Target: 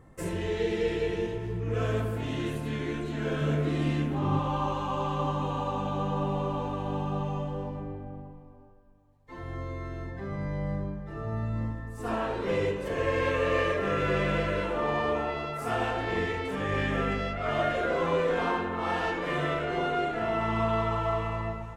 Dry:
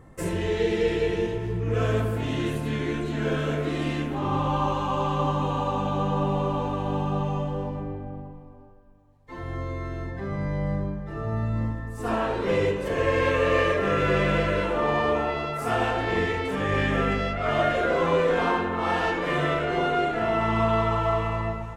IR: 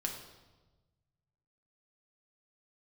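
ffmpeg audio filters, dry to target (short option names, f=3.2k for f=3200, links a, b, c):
-filter_complex "[0:a]asettb=1/sr,asplit=3[a][b][c];[a]atrim=end=3.414[d];[b]atrim=start=3.41:end=4.39,asetpts=PTS-STARTPTS,afade=t=in:d=0.004:c=qsin,afade=t=out:st=0.976:d=0.004:c=qsin,equalizer=f=140:t=o:w=1.9:g=7[e];[c]atrim=start=4.386[f];[d][e]acrossfade=d=0.004:c1=hsin:c2=qsin[g];[g][f]acrossfade=d=0.004:c1=qsin:c2=hsin,volume=-4.5dB"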